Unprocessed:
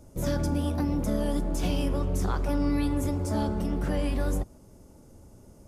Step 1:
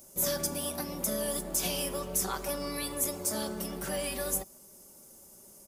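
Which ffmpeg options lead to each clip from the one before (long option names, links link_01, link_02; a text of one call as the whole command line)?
ffmpeg -i in.wav -af "aemphasis=mode=production:type=riaa,aecho=1:1:5.2:0.5,volume=-2.5dB" out.wav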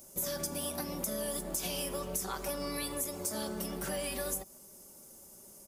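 ffmpeg -i in.wav -af "acompressor=threshold=-32dB:ratio=6" out.wav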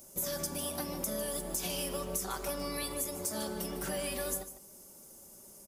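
ffmpeg -i in.wav -af "aecho=1:1:151:0.237" out.wav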